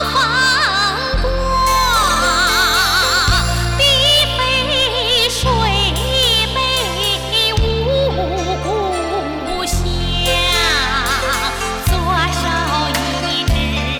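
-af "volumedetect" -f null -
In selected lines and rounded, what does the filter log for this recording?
mean_volume: -15.5 dB
max_volume: -7.1 dB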